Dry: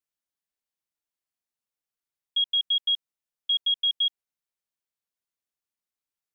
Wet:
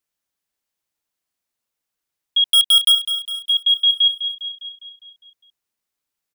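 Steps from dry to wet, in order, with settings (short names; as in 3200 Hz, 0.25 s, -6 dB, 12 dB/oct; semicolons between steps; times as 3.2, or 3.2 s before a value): 2.5–2.92 sample leveller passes 5; on a send: feedback echo 0.203 s, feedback 57%, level -10 dB; on the sum: gain +8 dB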